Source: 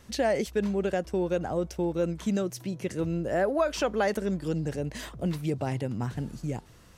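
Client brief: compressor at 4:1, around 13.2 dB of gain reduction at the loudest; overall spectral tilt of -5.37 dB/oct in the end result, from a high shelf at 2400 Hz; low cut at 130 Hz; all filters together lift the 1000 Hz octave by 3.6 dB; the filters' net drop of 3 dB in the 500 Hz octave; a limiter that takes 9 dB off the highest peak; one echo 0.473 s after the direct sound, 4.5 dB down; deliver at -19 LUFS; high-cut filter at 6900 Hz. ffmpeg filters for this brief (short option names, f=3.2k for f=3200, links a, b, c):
-af "highpass=130,lowpass=6.9k,equalizer=f=500:t=o:g=-6.5,equalizer=f=1k:t=o:g=7.5,highshelf=f=2.4k:g=3.5,acompressor=threshold=-36dB:ratio=4,alimiter=level_in=8.5dB:limit=-24dB:level=0:latency=1,volume=-8.5dB,aecho=1:1:473:0.596,volume=22dB"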